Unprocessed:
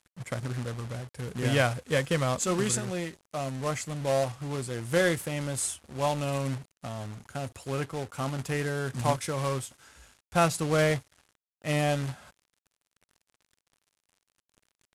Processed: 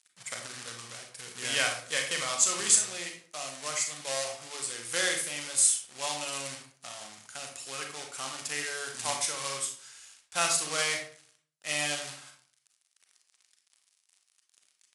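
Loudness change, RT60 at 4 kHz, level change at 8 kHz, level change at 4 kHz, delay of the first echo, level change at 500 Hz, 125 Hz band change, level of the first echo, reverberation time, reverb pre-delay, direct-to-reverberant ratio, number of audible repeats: +0.5 dB, 0.35 s, +9.0 dB, +6.0 dB, none, -10.0 dB, -21.0 dB, none, 0.50 s, 32 ms, 2.5 dB, none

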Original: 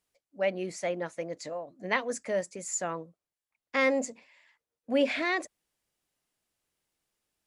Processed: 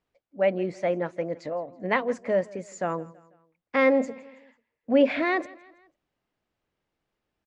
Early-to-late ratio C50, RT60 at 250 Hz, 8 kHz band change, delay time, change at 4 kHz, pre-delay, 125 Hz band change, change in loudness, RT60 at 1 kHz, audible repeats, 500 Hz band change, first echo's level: none, none, under -10 dB, 0.164 s, -2.0 dB, none, +7.0 dB, +5.0 dB, none, 3, +6.0 dB, -22.0 dB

